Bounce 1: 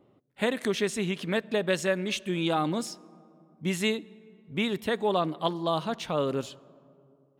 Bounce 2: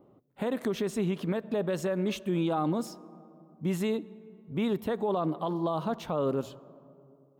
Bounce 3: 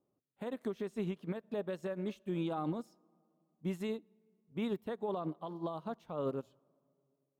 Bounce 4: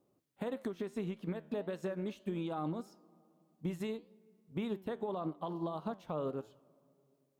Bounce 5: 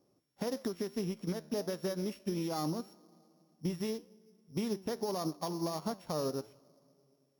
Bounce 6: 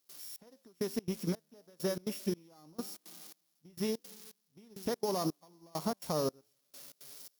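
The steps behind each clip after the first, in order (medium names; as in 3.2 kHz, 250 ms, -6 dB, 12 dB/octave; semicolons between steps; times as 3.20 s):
high-order bell 4.2 kHz -10.5 dB 3 oct; hum notches 60/120 Hz; peak limiter -24 dBFS, peak gain reduction 9.5 dB; trim +3 dB
upward expansion 2.5:1, over -37 dBFS; trim -5.5 dB
compression, threshold -41 dBFS, peak gain reduction 10 dB; flange 1.7 Hz, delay 9 ms, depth 4.2 ms, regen +85%; trim +11 dB
sorted samples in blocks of 8 samples; trim +2.5 dB
zero-crossing glitches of -40 dBFS; trance gate ".xxx.....xx" 167 bpm -24 dB; in parallel at -10 dB: crossover distortion -56 dBFS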